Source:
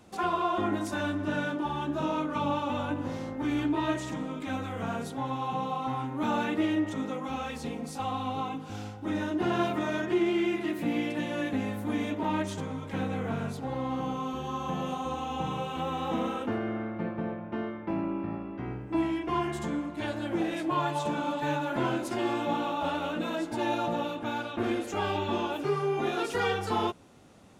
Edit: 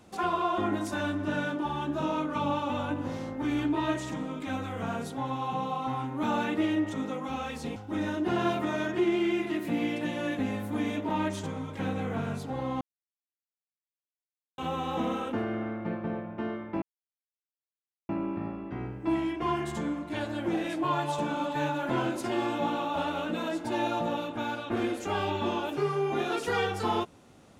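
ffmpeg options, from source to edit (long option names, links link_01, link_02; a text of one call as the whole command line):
ffmpeg -i in.wav -filter_complex "[0:a]asplit=5[link_01][link_02][link_03][link_04][link_05];[link_01]atrim=end=7.762[link_06];[link_02]atrim=start=8.898:end=13.95,asetpts=PTS-STARTPTS,afade=type=out:start_time=5.048:duration=0.004:curve=hsin[link_07];[link_03]atrim=start=13.95:end=15.72,asetpts=PTS-STARTPTS,volume=0[link_08];[link_04]atrim=start=15.72:end=17.96,asetpts=PTS-STARTPTS,afade=type=in:duration=0.004:curve=hsin,afade=type=out:start_time=2.236:duration=0.004:curve=hsin,apad=pad_dur=1.27[link_09];[link_05]atrim=start=17.96,asetpts=PTS-STARTPTS,afade=type=in:duration=0.004:curve=hsin[link_10];[link_07][link_08][link_09][link_10]concat=n=4:v=0:a=1[link_11];[link_06][link_11]acrossfade=duration=0.004:curve1=hsin:curve2=hsin" out.wav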